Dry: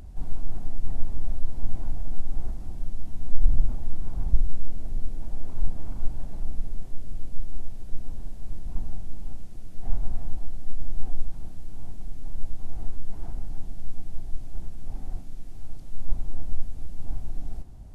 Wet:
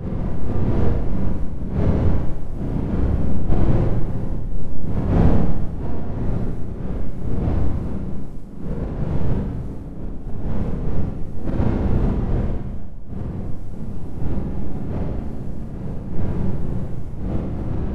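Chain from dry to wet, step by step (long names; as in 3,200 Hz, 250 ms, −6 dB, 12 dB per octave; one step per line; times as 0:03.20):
wind on the microphone 180 Hz −15 dBFS
dynamic equaliser 230 Hz, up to −4 dB, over −22 dBFS, Q 0.97
0:12.11–0:12.95: output level in coarse steps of 18 dB
volume swells 232 ms
four-comb reverb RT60 1.4 s, combs from 32 ms, DRR −5 dB
level −6 dB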